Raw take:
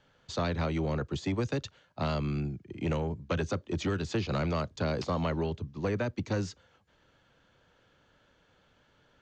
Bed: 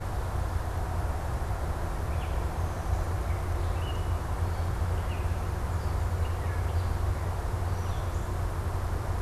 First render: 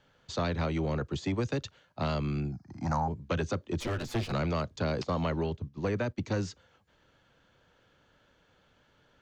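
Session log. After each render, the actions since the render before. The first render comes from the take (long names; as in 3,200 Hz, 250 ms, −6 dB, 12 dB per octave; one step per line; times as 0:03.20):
0:02.52–0:03.08: drawn EQ curve 270 Hz 0 dB, 420 Hz −19 dB, 770 Hz +13 dB, 1,600 Hz +4 dB, 3,000 Hz −22 dB, 5,000 Hz +14 dB, 7,700 Hz −1 dB
0:03.80–0:04.32: lower of the sound and its delayed copy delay 8.2 ms
0:05.03–0:06.23: noise gate −42 dBFS, range −8 dB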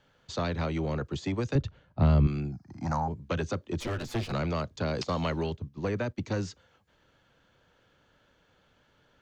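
0:01.55–0:02.27: RIAA equalisation playback
0:04.95–0:05.54: high-shelf EQ 2,400 Hz +7.5 dB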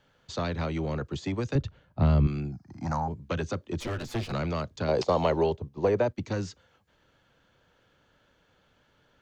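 0:04.88–0:06.08: flat-topped bell 590 Hz +9 dB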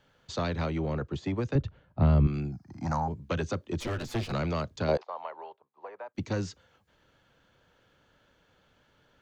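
0:00.70–0:02.34: high-shelf EQ 4,200 Hz −11 dB
0:04.97–0:06.15: four-pole ladder band-pass 1,200 Hz, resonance 30%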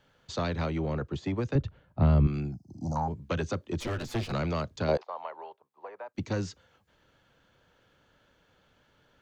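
0:02.54–0:02.96: Chebyshev band-stop filter 540–6,300 Hz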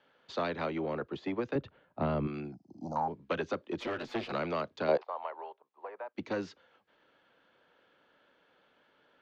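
three-way crossover with the lows and the highs turned down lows −22 dB, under 220 Hz, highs −23 dB, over 4,300 Hz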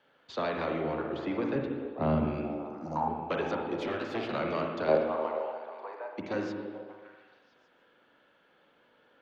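echo through a band-pass that steps 145 ms, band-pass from 220 Hz, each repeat 0.7 octaves, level −3.5 dB
spring reverb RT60 1.3 s, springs 38/51/60 ms, chirp 75 ms, DRR 2 dB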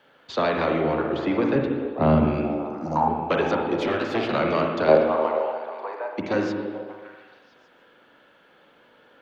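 level +9 dB
brickwall limiter −3 dBFS, peak gain reduction 1 dB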